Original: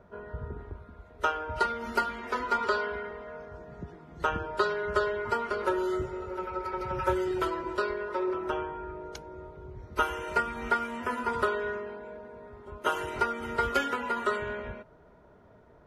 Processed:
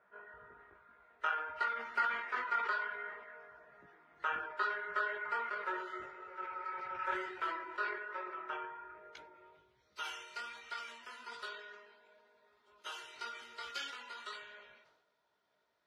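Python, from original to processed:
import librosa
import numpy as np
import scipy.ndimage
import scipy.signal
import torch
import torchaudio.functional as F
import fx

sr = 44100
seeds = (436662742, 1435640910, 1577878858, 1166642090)

y = fx.chorus_voices(x, sr, voices=4, hz=1.2, base_ms=18, depth_ms=3.6, mix_pct=40)
y = fx.filter_sweep_bandpass(y, sr, from_hz=1800.0, to_hz=4300.0, start_s=9.04, end_s=9.93, q=1.8)
y = fx.sustainer(y, sr, db_per_s=57.0)
y = y * librosa.db_to_amplitude(1.0)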